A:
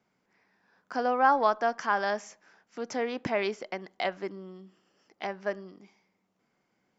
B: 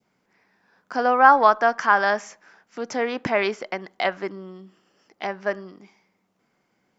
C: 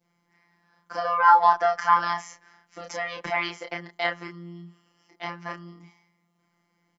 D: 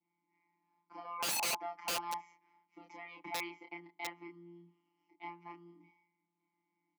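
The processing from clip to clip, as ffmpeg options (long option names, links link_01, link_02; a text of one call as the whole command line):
ffmpeg -i in.wav -af "adynamicequalizer=threshold=0.0141:dfrequency=1400:dqfactor=0.84:tfrequency=1400:tqfactor=0.84:attack=5:release=100:ratio=0.375:range=3:mode=boostabove:tftype=bell,volume=5dB" out.wav
ffmpeg -i in.wav -filter_complex "[0:a]acrossover=split=490[link_01][link_02];[link_01]acompressor=threshold=-37dB:ratio=6[link_03];[link_03][link_02]amix=inputs=2:normalize=0,afftfilt=real='hypot(re,im)*cos(PI*b)':imag='0':win_size=1024:overlap=0.75,asplit=2[link_04][link_05];[link_05]adelay=30,volume=-3.5dB[link_06];[link_04][link_06]amix=inputs=2:normalize=0" out.wav
ffmpeg -i in.wav -filter_complex "[0:a]asplit=3[link_01][link_02][link_03];[link_01]bandpass=frequency=300:width_type=q:width=8,volume=0dB[link_04];[link_02]bandpass=frequency=870:width_type=q:width=8,volume=-6dB[link_05];[link_03]bandpass=frequency=2240:width_type=q:width=8,volume=-9dB[link_06];[link_04][link_05][link_06]amix=inputs=3:normalize=0,aeval=exprs='(mod(29.9*val(0)+1,2)-1)/29.9':channel_layout=same,highpass=110" out.wav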